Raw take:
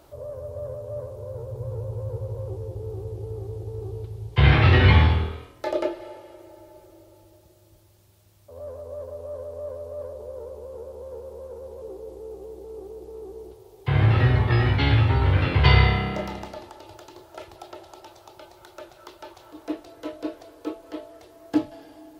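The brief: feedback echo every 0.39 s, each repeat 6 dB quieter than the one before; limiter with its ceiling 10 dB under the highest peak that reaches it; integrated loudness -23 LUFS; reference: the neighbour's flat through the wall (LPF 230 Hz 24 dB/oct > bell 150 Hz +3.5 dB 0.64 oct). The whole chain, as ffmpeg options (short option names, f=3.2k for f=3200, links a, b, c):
-af "alimiter=limit=-14dB:level=0:latency=1,lowpass=f=230:w=0.5412,lowpass=f=230:w=1.3066,equalizer=f=150:t=o:w=0.64:g=3.5,aecho=1:1:390|780|1170|1560|1950|2340:0.501|0.251|0.125|0.0626|0.0313|0.0157,volume=3dB"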